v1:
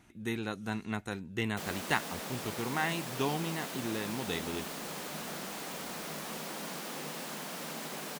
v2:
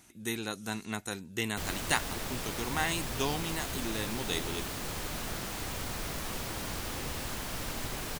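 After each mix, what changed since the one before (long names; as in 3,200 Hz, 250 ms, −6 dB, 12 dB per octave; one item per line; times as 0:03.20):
speech: add bass and treble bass −3 dB, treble +13 dB
background: remove Chebyshev high-pass with heavy ripple 150 Hz, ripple 3 dB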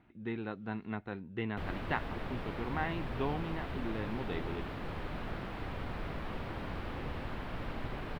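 speech: add high-frequency loss of the air 240 metres
master: add high-frequency loss of the air 460 metres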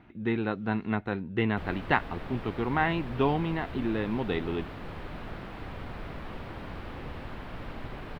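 speech +9.5 dB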